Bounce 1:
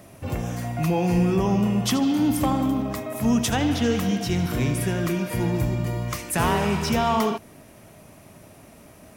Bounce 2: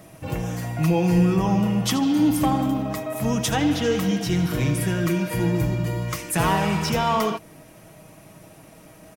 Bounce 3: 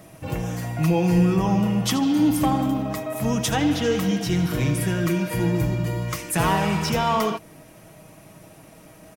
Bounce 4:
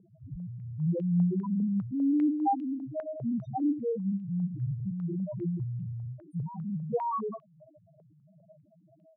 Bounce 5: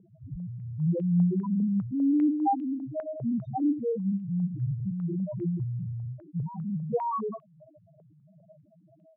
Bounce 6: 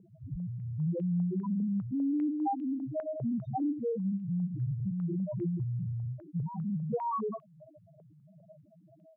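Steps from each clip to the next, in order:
comb 6.3 ms, depth 49%
nothing audible
wow and flutter 22 cents; loudest bins only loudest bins 1; stepped low-pass 5 Hz 430–2800 Hz; gain -3 dB
air absorption 280 m; gain +2.5 dB
compressor 3:1, threshold -30 dBFS, peak gain reduction 8 dB

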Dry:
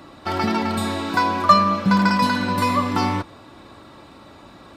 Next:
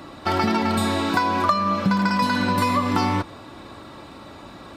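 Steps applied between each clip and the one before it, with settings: compressor 12:1, threshold -20 dBFS, peak gain reduction 13 dB; gain +3.5 dB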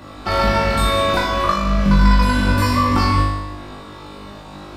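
octaver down 2 oct, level -2 dB; flutter echo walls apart 3.4 m, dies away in 0.93 s; gain -1 dB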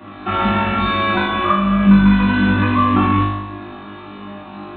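reverb, pre-delay 3 ms, DRR -4.5 dB; downsampling 8000 Hz; gain -5.5 dB

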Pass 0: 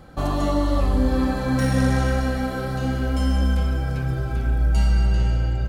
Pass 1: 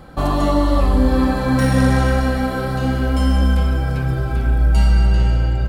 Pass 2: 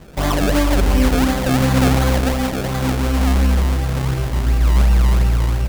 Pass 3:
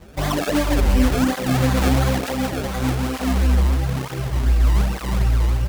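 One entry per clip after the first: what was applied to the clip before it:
thirty-one-band EQ 100 Hz -4 dB, 1000 Hz +3 dB, 6300 Hz -5 dB; gain +5 dB
decimation with a swept rate 31×, swing 100% 2.8 Hz
tape flanging out of phase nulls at 1.1 Hz, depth 7.8 ms

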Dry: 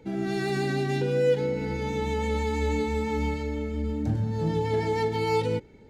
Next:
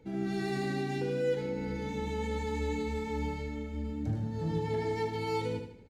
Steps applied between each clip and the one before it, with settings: low shelf 140 Hz +4 dB; on a send: feedback echo 76 ms, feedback 41%, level -7 dB; on the sum: gain -7.5 dB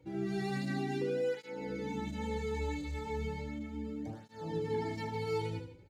tape flanging out of phase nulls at 0.35 Hz, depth 4.7 ms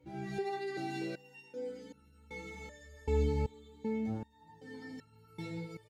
echo 0.419 s -4 dB; stepped resonator 2.6 Hz 72–1400 Hz; gain +7.5 dB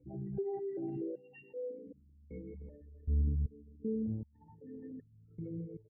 formant sharpening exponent 3; steep low-pass 2900 Hz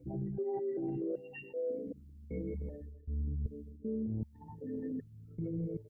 reverse; compressor 10:1, threshold -42 dBFS, peak gain reduction 15.5 dB; reverse; AM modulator 150 Hz, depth 15%; gain +10 dB

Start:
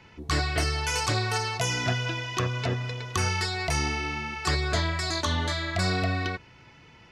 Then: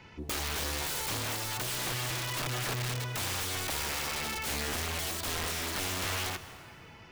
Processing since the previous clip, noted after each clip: compressor 12:1, threshold -28 dBFS, peak gain reduction 8 dB; wrapped overs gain 28.5 dB; on a send at -13 dB: reverb RT60 3.0 s, pre-delay 0.118 s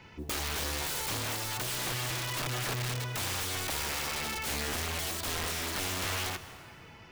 modulation noise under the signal 31 dB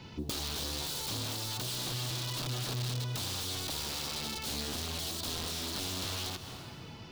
compressor, threshold -39 dBFS, peak gain reduction 8 dB; graphic EQ 125/250/2000/4000 Hz +5/+5/-8/+9 dB; gain +2 dB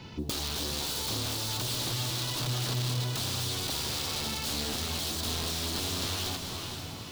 diffused feedback echo 0.478 s, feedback 44%, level -6.5 dB; gain +3 dB

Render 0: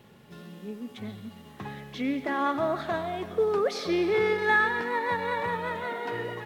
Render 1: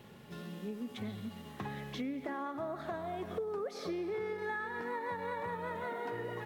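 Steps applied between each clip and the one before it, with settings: dynamic EQ 3300 Hz, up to -7 dB, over -46 dBFS, Q 0.72; compressor 6:1, threshold -36 dBFS, peak gain reduction 14 dB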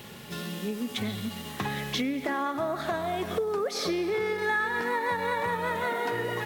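high shelf 2100 Hz +10.5 dB; gain +8 dB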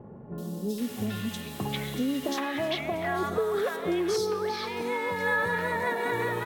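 three bands offset in time lows, highs, mids 0.38/0.78 s, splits 940/4300 Hz; gain +1.5 dB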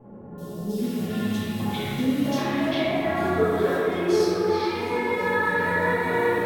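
reverb RT60 3.2 s, pre-delay 4 ms, DRR -11 dB; gain -7 dB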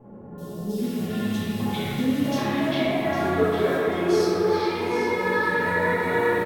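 echo 0.805 s -9 dB

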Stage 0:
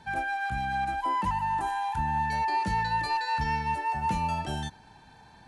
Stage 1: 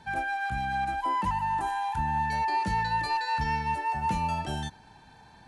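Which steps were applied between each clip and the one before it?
nothing audible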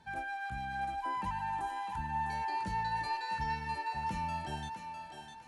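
thinning echo 0.654 s, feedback 39%, high-pass 410 Hz, level -6 dB; gain -8.5 dB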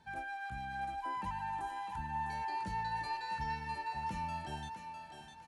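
echo 1.1 s -23 dB; gain -3 dB

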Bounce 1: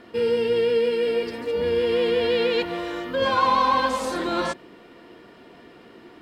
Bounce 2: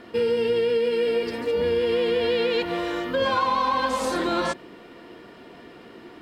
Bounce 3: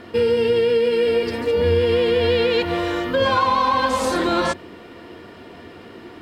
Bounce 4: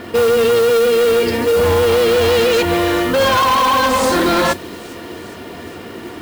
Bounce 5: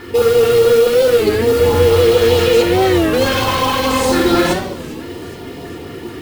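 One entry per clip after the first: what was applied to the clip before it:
compressor, threshold -22 dBFS, peak gain reduction 7 dB; gain +2.5 dB
bell 88 Hz +14 dB 0.37 oct; gain +4.5 dB
added harmonics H 5 -9 dB, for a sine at -7.5 dBFS; modulation noise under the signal 19 dB; thin delay 0.408 s, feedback 65%, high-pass 3700 Hz, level -17.5 dB
LFO notch saw up 4.6 Hz 510–2200 Hz; shoebox room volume 3900 m³, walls furnished, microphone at 4.1 m; record warp 33 1/3 rpm, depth 160 cents; gain -2 dB

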